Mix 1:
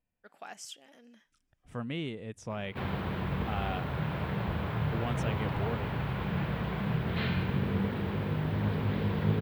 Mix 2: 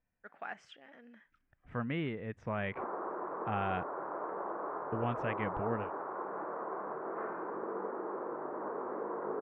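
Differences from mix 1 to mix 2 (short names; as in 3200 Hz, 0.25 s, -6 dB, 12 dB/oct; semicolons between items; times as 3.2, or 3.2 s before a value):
background: add Chebyshev band-pass 330–1200 Hz, order 3; master: add synth low-pass 1800 Hz, resonance Q 1.9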